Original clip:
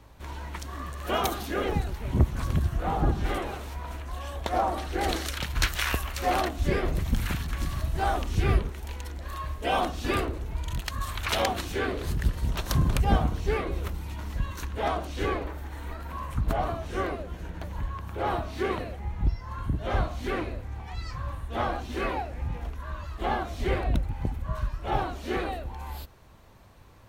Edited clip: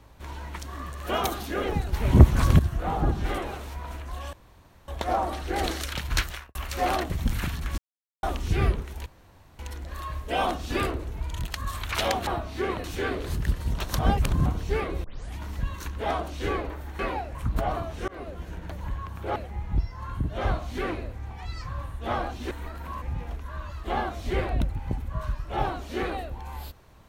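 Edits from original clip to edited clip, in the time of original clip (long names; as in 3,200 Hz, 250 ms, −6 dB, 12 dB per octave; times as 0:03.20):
0:01.93–0:02.59: clip gain +8.5 dB
0:04.33: splice in room tone 0.55 s
0:05.62–0:06.00: fade out and dull
0:06.55–0:06.97: remove
0:07.65–0:08.10: silence
0:08.93: splice in room tone 0.53 s
0:12.76–0:13.23: reverse
0:13.81: tape start 0.33 s
0:15.76–0:16.27: swap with 0:22.00–0:22.36
0:17.00–0:17.33: fade in equal-power
0:18.28–0:18.85: move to 0:11.61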